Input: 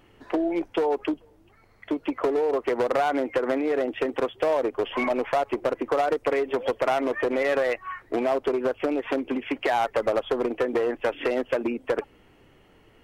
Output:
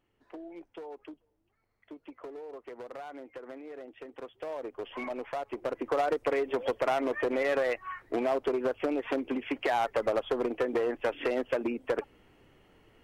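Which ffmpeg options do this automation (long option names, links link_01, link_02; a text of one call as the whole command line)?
ffmpeg -i in.wav -af "volume=-4.5dB,afade=type=in:start_time=4.07:duration=0.86:silence=0.398107,afade=type=in:start_time=5.47:duration=0.51:silence=0.446684" out.wav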